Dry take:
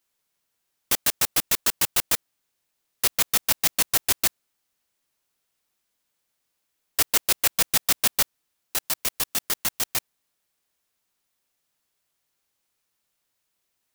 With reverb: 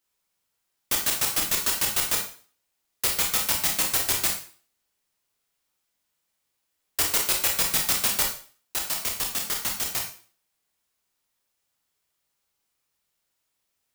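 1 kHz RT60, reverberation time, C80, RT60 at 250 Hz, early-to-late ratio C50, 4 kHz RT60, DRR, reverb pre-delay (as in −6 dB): 0.40 s, 0.40 s, 11.0 dB, 0.45 s, 6.5 dB, 0.40 s, 1.0 dB, 25 ms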